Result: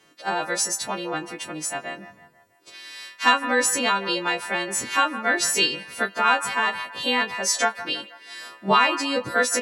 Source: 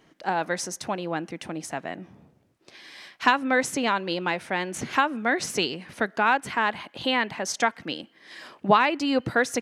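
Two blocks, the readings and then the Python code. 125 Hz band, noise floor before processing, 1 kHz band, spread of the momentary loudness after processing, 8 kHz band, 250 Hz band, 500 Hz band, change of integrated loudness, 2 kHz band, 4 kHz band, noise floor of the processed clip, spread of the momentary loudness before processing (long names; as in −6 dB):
−4.0 dB, −63 dBFS, +1.5 dB, 15 LU, +9.5 dB, −2.5 dB, 0.0 dB, +3.0 dB, +3.0 dB, +6.5 dB, −57 dBFS, 14 LU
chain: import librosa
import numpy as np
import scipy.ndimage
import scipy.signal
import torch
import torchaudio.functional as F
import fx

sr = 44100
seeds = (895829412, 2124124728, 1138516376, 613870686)

y = fx.freq_snap(x, sr, grid_st=2)
y = fx.low_shelf(y, sr, hz=160.0, db=-5.5)
y = fx.doubler(y, sr, ms=20.0, db=-9.0)
y = fx.echo_wet_bandpass(y, sr, ms=163, feedback_pct=49, hz=1200.0, wet_db=-13)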